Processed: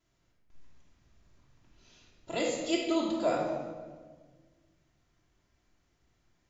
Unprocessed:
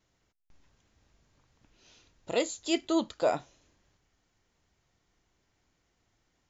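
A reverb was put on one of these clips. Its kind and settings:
rectangular room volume 1,400 cubic metres, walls mixed, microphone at 3 metres
level −6 dB

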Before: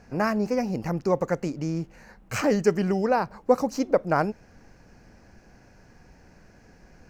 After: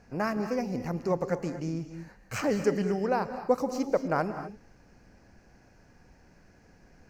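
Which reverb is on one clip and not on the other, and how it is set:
reverb whose tail is shaped and stops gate 270 ms rising, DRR 9.5 dB
level −5 dB

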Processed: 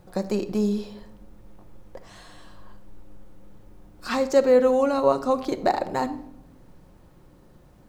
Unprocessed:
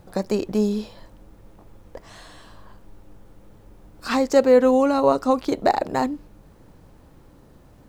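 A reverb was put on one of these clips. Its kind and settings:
rectangular room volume 2,100 cubic metres, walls furnished, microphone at 0.96 metres
level −3.5 dB

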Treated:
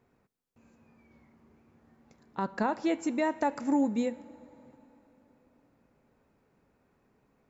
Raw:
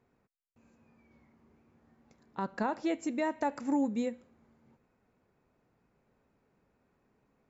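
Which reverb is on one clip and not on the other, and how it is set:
dense smooth reverb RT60 4.2 s, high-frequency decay 0.7×, DRR 20 dB
level +3 dB

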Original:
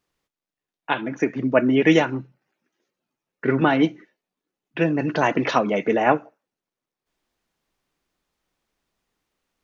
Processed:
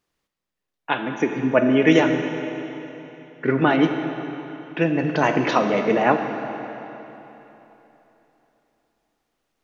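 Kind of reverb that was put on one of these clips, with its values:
comb and all-pass reverb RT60 3.4 s, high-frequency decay 0.9×, pre-delay 5 ms, DRR 5.5 dB

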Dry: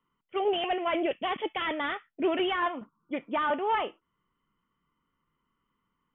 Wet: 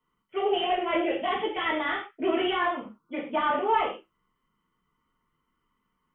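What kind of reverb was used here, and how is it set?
reverb whose tail is shaped and stops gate 150 ms falling, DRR −5.5 dB
level −4 dB

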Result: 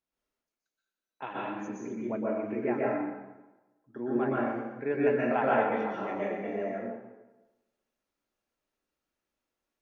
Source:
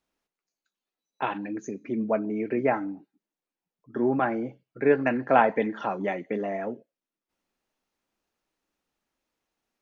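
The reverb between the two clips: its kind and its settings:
dense smooth reverb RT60 1.1 s, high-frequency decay 0.75×, pre-delay 110 ms, DRR −6 dB
level −11 dB

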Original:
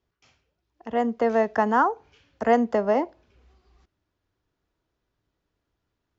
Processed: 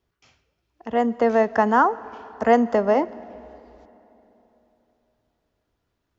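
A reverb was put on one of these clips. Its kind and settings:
comb and all-pass reverb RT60 3.4 s, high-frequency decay 0.7×, pre-delay 80 ms, DRR 19 dB
level +3 dB

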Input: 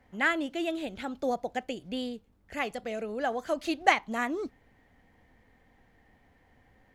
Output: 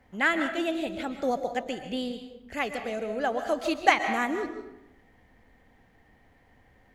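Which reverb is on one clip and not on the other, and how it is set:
comb and all-pass reverb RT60 0.88 s, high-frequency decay 0.65×, pre-delay 95 ms, DRR 7.5 dB
level +2 dB

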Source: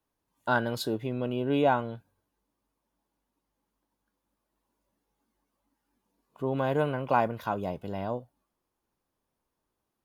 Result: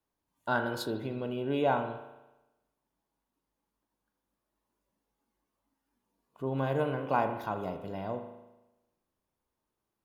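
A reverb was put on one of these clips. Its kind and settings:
spring reverb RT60 1 s, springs 37 ms, chirp 45 ms, DRR 6 dB
level −4 dB

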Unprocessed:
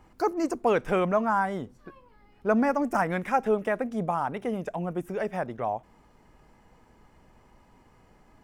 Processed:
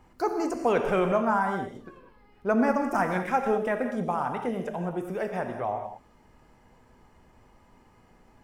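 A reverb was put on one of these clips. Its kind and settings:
reverb whose tail is shaped and stops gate 230 ms flat, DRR 4.5 dB
level −1 dB

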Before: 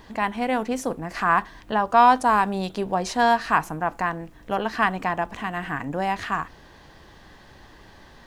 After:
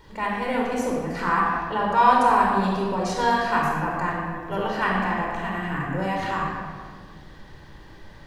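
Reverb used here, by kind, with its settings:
rectangular room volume 2,600 cubic metres, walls mixed, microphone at 4.6 metres
level −7 dB

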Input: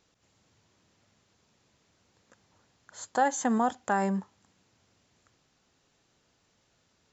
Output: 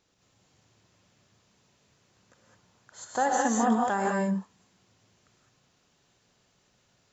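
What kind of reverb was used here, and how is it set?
reverb whose tail is shaped and stops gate 230 ms rising, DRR −2 dB
level −2 dB

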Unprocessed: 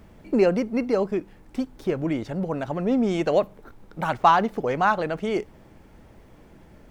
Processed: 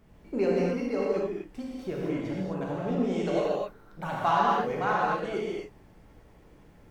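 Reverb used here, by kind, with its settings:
reverb whose tail is shaped and stops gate 290 ms flat, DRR −5.5 dB
level −11 dB

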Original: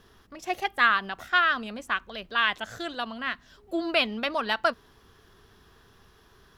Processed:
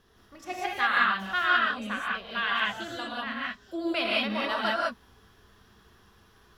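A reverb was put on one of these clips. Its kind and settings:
reverb whose tail is shaped and stops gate 220 ms rising, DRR −5 dB
level −7 dB

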